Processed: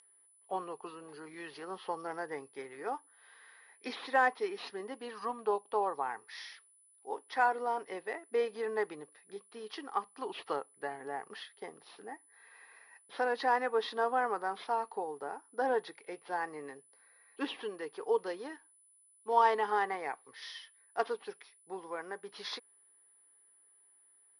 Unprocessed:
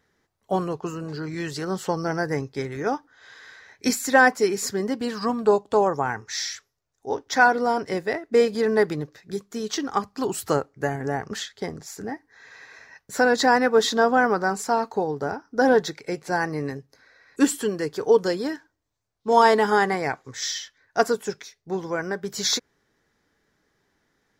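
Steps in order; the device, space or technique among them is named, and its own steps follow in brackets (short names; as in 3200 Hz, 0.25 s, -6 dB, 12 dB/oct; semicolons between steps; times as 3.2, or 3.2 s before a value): toy sound module (decimation joined by straight lines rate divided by 4×; pulse-width modulation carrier 10000 Hz; speaker cabinet 590–4800 Hz, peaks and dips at 620 Hz -7 dB, 1500 Hz -8 dB, 2200 Hz -4 dB, 3800 Hz -5 dB); gain -6 dB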